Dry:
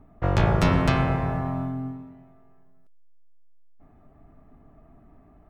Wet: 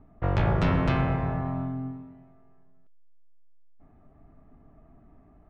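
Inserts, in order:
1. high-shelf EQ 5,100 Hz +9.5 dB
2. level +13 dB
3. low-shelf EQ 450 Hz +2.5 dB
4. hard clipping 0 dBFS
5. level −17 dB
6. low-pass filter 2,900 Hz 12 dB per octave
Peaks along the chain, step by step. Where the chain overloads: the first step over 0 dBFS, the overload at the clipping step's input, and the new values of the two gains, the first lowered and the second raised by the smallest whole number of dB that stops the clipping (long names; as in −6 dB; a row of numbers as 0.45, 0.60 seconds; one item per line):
−6.0, +7.0, +9.0, 0.0, −17.0, −16.5 dBFS
step 2, 9.0 dB
step 2 +4 dB, step 5 −8 dB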